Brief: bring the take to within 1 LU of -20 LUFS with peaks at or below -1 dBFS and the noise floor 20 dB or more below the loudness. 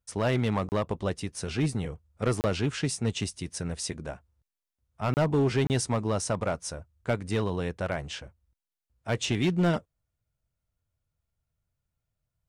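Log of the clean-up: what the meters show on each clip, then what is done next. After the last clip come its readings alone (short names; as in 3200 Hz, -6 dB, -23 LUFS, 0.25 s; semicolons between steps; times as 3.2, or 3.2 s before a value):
clipped 0.8%; flat tops at -19.0 dBFS; dropouts 4; longest dropout 29 ms; loudness -29.5 LUFS; peak -19.0 dBFS; loudness target -20.0 LUFS
-> clip repair -19 dBFS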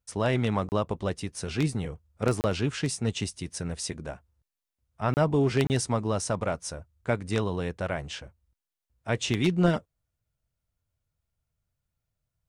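clipped 0.0%; dropouts 4; longest dropout 29 ms
-> interpolate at 0.69/2.41/5.14/5.67, 29 ms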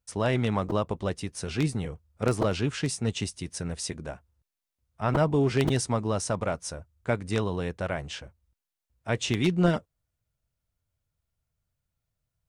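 dropouts 0; loudness -28.5 LUFS; peak -10.0 dBFS; loudness target -20.0 LUFS
-> gain +8.5 dB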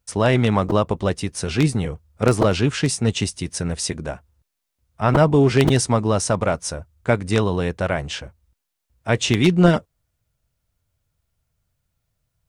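loudness -20.0 LUFS; peak -1.5 dBFS; noise floor -78 dBFS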